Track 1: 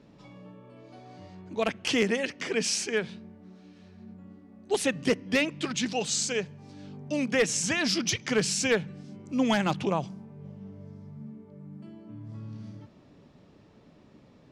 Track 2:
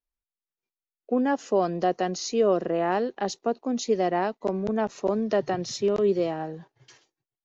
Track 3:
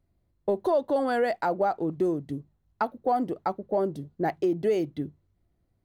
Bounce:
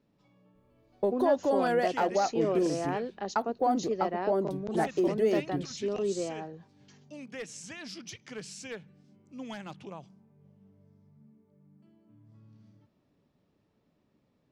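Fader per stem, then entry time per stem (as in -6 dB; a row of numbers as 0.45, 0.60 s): -16.0, -8.0, -2.0 dB; 0.00, 0.00, 0.55 s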